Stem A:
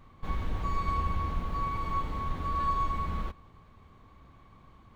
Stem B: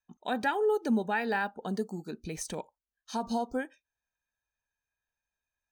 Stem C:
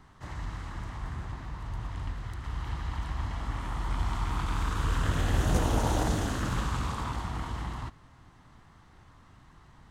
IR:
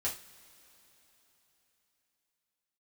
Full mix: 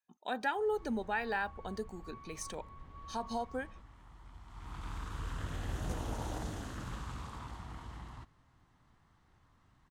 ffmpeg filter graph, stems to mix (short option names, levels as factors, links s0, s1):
-filter_complex "[0:a]lowpass=3200,adelay=500,volume=0.106[s0];[1:a]highpass=f=370:p=1,highshelf=f=11000:g=-6.5,volume=0.668,asplit=2[s1][s2];[2:a]adelay=350,volume=0.251,afade=t=in:st=4.47:d=0.4:silence=0.266073[s3];[s2]apad=whole_len=240493[s4];[s0][s4]sidechaincompress=threshold=0.0158:ratio=8:attack=40:release=444[s5];[s5][s1][s3]amix=inputs=3:normalize=0"